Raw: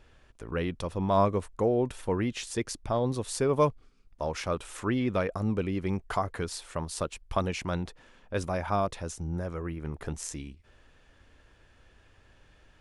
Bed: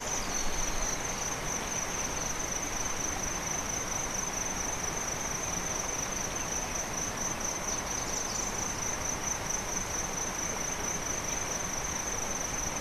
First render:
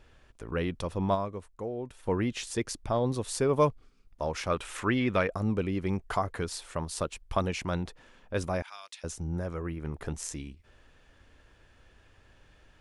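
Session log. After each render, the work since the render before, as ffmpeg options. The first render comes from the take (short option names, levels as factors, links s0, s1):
-filter_complex "[0:a]asettb=1/sr,asplit=3[s0][s1][s2];[s0]atrim=end=4.504[s3];[s1]atrim=start=4.5:end=5.27,asetpts=PTS-STARTPTS,afade=t=in:d=0.004:c=qsin,afade=t=out:st=0.766:d=0.004:c=qsin,equalizer=f=2100:t=o:w=1.9:g=6.5[s4];[s2]atrim=start=5.266[s5];[s3][s4]acrossfade=d=0.004:c1=hsin:c2=qsin[s6];[s6][s5]acrossfade=d=0.004:c1=qsin:c2=hsin,asettb=1/sr,asplit=3[s7][s8][s9];[s7]atrim=end=8.624[s10];[s8]atrim=start=8.62:end=9.04,asetpts=PTS-STARTPTS,afade=t=in:d=0.004:c=qsin,afade=t=out:st=0.416:d=0.004:c=qsin,asuperpass=centerf=5100:order=4:qfactor=0.67[s11];[s9]atrim=start=9.036[s12];[s10][s11]acrossfade=d=0.004:c1=hsin:c2=qsin[s13];[s13][s12]acrossfade=d=0.004:c1=qsin:c2=hsin,asplit=3[s14][s15][s16];[s14]atrim=end=1.29,asetpts=PTS-STARTPTS,afade=t=out:st=1.14:d=0.15:c=exp:silence=0.316228[s17];[s15]atrim=start=1.29:end=1.92,asetpts=PTS-STARTPTS,volume=0.316[s18];[s16]atrim=start=1.92,asetpts=PTS-STARTPTS,afade=t=in:d=0.15:c=exp:silence=0.316228[s19];[s17][s18][s19]concat=n=3:v=0:a=1"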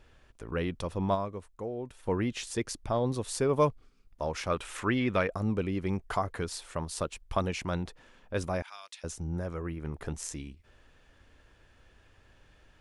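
-af "volume=0.891"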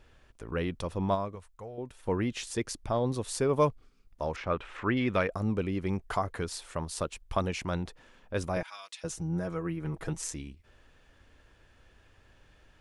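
-filter_complex "[0:a]asettb=1/sr,asplit=3[s0][s1][s2];[s0]atrim=end=1.354[s3];[s1]atrim=start=1.35:end=1.78,asetpts=PTS-STARTPTS,afade=t=in:d=0.004:c=qsin,afade=t=out:st=0.426:d=0.004:c=qsin,equalizer=f=300:t=o:w=1.3:g=-14[s4];[s2]atrim=start=1.776[s5];[s3][s4]acrossfade=d=0.004:c1=hsin:c2=qsin[s6];[s6][s5]acrossfade=d=0.004:c1=qsin:c2=hsin,asettb=1/sr,asplit=3[s7][s8][s9];[s7]atrim=end=4.364[s10];[s8]atrim=start=4.36:end=4.97,asetpts=PTS-STARTPTS,afade=t=in:d=0.004:c=qsin,afade=t=out:st=0.606:d=0.004:c=qsin,lowpass=2600[s11];[s9]atrim=start=4.966[s12];[s10][s11]acrossfade=d=0.004:c1=hsin:c2=qsin[s13];[s13][s12]acrossfade=d=0.004:c1=qsin:c2=hsin,asettb=1/sr,asplit=3[s14][s15][s16];[s14]atrim=end=8.564[s17];[s15]atrim=start=8.56:end=10.31,asetpts=PTS-STARTPTS,afade=t=in:d=0.004:c=qsin,afade=t=out:st=1.746:d=0.004:c=qsin,aecho=1:1:6.2:0.79,atrim=end_sample=77175[s18];[s16]atrim=start=10.306[s19];[s17][s18]acrossfade=d=0.004:c1=hsin:c2=qsin[s20];[s20][s19]acrossfade=d=0.004:c1=qsin:c2=hsin"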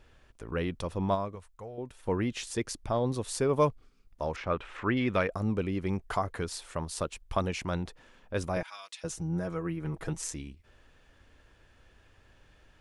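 -af anull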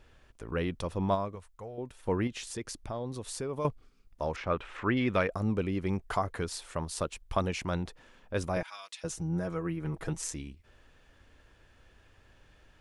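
-filter_complex "[0:a]asettb=1/sr,asplit=3[s0][s1][s2];[s0]atrim=end=2.274[s3];[s1]atrim=start=2.27:end=3.65,asetpts=PTS-STARTPTS,afade=t=in:d=0.004:c=qsin,afade=t=out:st=1.376:d=0.004:c=qsin,acompressor=threshold=0.0126:ratio=2:attack=3.2:release=140:knee=1:detection=peak[s4];[s2]atrim=start=3.646[s5];[s3][s4]acrossfade=d=0.004:c1=hsin:c2=qsin[s6];[s6][s5]acrossfade=d=0.004:c1=qsin:c2=hsin"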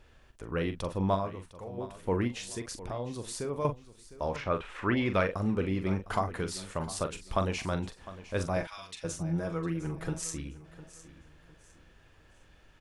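-filter_complex "[0:a]asplit=2[s0][s1];[s1]adelay=42,volume=0.355[s2];[s0][s2]amix=inputs=2:normalize=0,aecho=1:1:706|1412|2118:0.15|0.0464|0.0144"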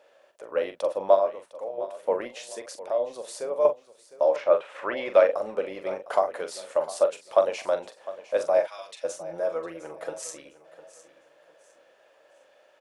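-af "highpass=f=570:t=q:w=7.1,tremolo=f=240:d=0.182"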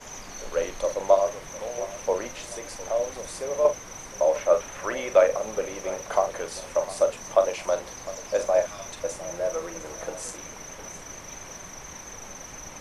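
-filter_complex "[1:a]volume=0.422[s0];[0:a][s0]amix=inputs=2:normalize=0"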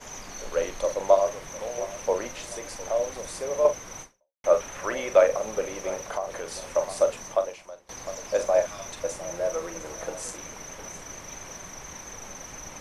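-filter_complex "[0:a]asettb=1/sr,asplit=3[s0][s1][s2];[s0]atrim=end=6.014[s3];[s1]atrim=start=6.01:end=6.65,asetpts=PTS-STARTPTS,afade=t=in:d=0.004:c=qsin,afade=t=out:st=0.636:d=0.004:c=qsin,acompressor=threshold=0.0282:ratio=2:attack=3.2:release=140:knee=1:detection=peak[s4];[s2]atrim=start=6.646[s5];[s3][s4]acrossfade=d=0.004:c1=hsin:c2=qsin[s6];[s6][s5]acrossfade=d=0.004:c1=qsin:c2=hsin,asplit=3[s7][s8][s9];[s7]atrim=end=4.44,asetpts=PTS-STARTPTS,afade=t=out:st=4.02:d=0.42:c=exp[s10];[s8]atrim=start=4.44:end=7.89,asetpts=PTS-STARTPTS,afade=t=in:d=0.004:c=hsin,afade=t=out:st=2.77:d=0.68:c=qua:silence=0.0749894[s11];[s9]atrim=start=7.89,asetpts=PTS-STARTPTS,afade=t=in:d=0.004:c=hsin:silence=0.0749894[s12];[s10][s11][s12]concat=n=3:v=0:a=1"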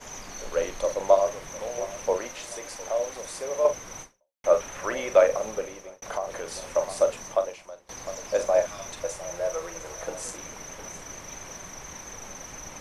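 -filter_complex "[0:a]asettb=1/sr,asplit=3[s0][s1][s2];[s0]atrim=end=2.174[s3];[s1]atrim=start=2.17:end=3.7,asetpts=PTS-STARTPTS,afade=t=in:d=0.004:c=qsin,afade=t=out:st=1.526:d=0.004:c=qsin,lowshelf=f=240:g=-8[s4];[s2]atrim=start=3.696[s5];[s3][s4]acrossfade=d=0.004:c1=hsin:c2=qsin[s6];[s6][s5]acrossfade=d=0.004:c1=qsin:c2=hsin,asettb=1/sr,asplit=3[s7][s8][s9];[s7]atrim=end=9.044[s10];[s8]atrim=start=9.04:end=10.07,asetpts=PTS-STARTPTS,afade=t=in:d=0.004:c=qsin,afade=t=out:st=1.026:d=0.004:c=qsin,equalizer=f=250:t=o:w=0.77:g=-11.5[s11];[s9]atrim=start=10.066[s12];[s10][s11]acrossfade=d=0.004:c1=hsin:c2=qsin[s13];[s13][s12]acrossfade=d=0.004:c1=qsin:c2=hsin,asplit=2[s14][s15];[s14]atrim=end=6.02,asetpts=PTS-STARTPTS,afade=t=out:st=5.45:d=0.57[s16];[s15]atrim=start=6.02,asetpts=PTS-STARTPTS,afade=t=in:d=0.004:c=hsin[s17];[s16][s17]concat=n=2:v=0:a=1"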